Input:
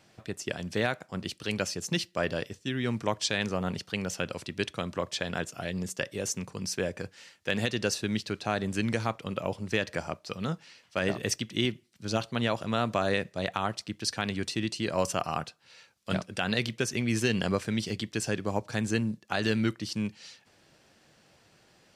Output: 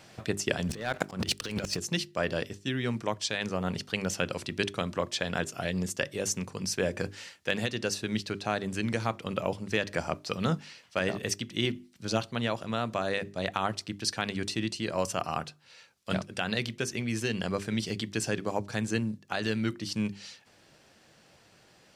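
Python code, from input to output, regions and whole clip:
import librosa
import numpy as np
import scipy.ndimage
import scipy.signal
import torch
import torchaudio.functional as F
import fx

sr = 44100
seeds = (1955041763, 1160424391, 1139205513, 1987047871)

y = fx.chain(x, sr, fx.leveller(passes=2),
    fx.over_compress(threshold_db=-30.0, ratio=-0.5),
    fx.auto_swell(attack_ms=129.0), at=(0.69, 1.79))
y = fx.hum_notches(y, sr, base_hz=50, count=8)
y = fx.rider(y, sr, range_db=10, speed_s=0.5)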